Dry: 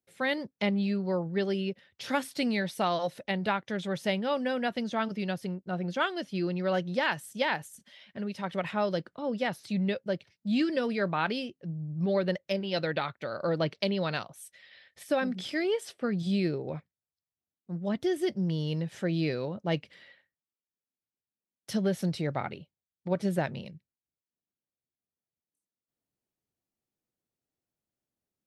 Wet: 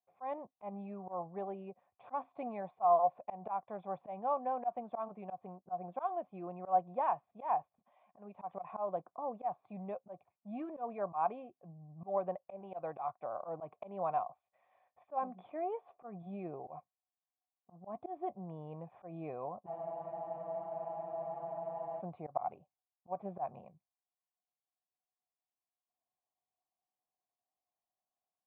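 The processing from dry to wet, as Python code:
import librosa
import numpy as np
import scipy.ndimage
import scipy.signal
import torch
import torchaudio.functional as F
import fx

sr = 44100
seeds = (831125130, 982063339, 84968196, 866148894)

y = fx.formant_cascade(x, sr, vowel='a')
y = fx.auto_swell(y, sr, attack_ms=124.0)
y = fx.spec_freeze(y, sr, seeds[0], at_s=19.68, hold_s=2.31)
y = F.gain(torch.from_numpy(y), 10.5).numpy()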